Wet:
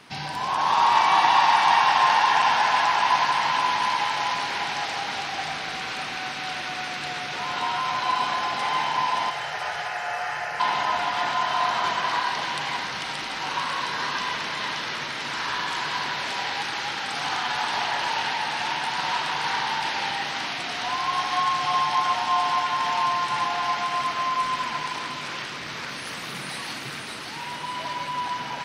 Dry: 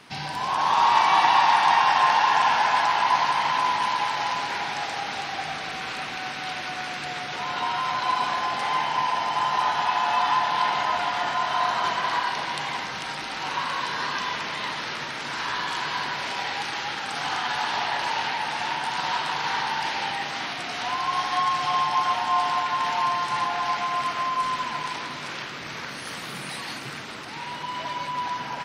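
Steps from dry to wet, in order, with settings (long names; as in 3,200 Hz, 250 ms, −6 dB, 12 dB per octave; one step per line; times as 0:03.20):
0:09.30–0:10.60: phaser with its sweep stopped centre 980 Hz, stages 6
on a send: delay with a high-pass on its return 576 ms, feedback 48%, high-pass 1,900 Hz, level −4 dB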